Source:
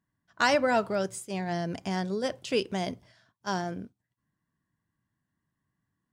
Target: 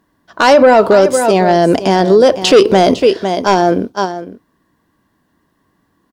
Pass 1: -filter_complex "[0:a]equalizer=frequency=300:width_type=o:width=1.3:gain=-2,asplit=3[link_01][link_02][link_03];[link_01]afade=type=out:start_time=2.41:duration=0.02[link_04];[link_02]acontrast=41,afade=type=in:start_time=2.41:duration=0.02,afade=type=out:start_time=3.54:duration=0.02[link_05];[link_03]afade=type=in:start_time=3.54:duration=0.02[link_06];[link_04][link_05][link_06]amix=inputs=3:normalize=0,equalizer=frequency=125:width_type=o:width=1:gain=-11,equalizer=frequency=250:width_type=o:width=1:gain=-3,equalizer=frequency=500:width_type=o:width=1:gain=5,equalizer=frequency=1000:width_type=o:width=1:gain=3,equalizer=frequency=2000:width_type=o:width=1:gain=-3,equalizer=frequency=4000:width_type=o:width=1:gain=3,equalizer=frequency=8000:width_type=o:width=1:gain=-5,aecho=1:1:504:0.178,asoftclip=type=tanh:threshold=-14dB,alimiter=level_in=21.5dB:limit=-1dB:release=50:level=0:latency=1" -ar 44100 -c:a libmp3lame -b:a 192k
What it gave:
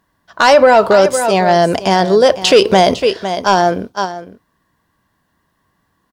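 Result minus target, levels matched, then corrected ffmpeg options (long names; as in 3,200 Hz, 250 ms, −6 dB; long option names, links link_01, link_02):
250 Hz band −3.0 dB
-filter_complex "[0:a]equalizer=frequency=300:width_type=o:width=1.3:gain=7,asplit=3[link_01][link_02][link_03];[link_01]afade=type=out:start_time=2.41:duration=0.02[link_04];[link_02]acontrast=41,afade=type=in:start_time=2.41:duration=0.02,afade=type=out:start_time=3.54:duration=0.02[link_05];[link_03]afade=type=in:start_time=3.54:duration=0.02[link_06];[link_04][link_05][link_06]amix=inputs=3:normalize=0,equalizer=frequency=125:width_type=o:width=1:gain=-11,equalizer=frequency=250:width_type=o:width=1:gain=-3,equalizer=frequency=500:width_type=o:width=1:gain=5,equalizer=frequency=1000:width_type=o:width=1:gain=3,equalizer=frequency=2000:width_type=o:width=1:gain=-3,equalizer=frequency=4000:width_type=o:width=1:gain=3,equalizer=frequency=8000:width_type=o:width=1:gain=-5,aecho=1:1:504:0.178,asoftclip=type=tanh:threshold=-14dB,alimiter=level_in=21.5dB:limit=-1dB:release=50:level=0:latency=1" -ar 44100 -c:a libmp3lame -b:a 192k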